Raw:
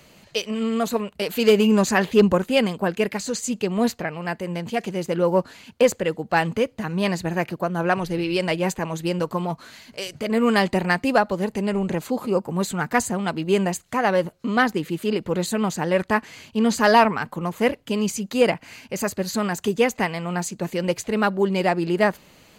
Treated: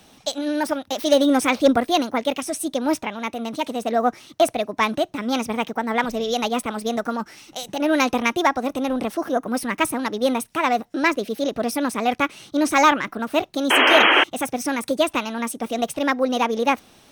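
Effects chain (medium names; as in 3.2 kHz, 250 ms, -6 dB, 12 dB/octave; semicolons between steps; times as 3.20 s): wide varispeed 1.32×; painted sound noise, 13.70–14.24 s, 260–3300 Hz -15 dBFS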